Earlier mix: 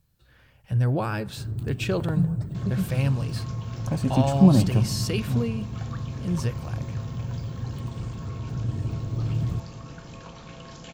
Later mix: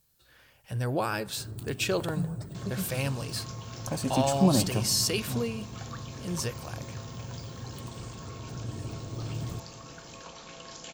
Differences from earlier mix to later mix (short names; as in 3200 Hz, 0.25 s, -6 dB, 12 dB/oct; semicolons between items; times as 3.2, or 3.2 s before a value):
second sound: send off; master: add tone controls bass -10 dB, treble +8 dB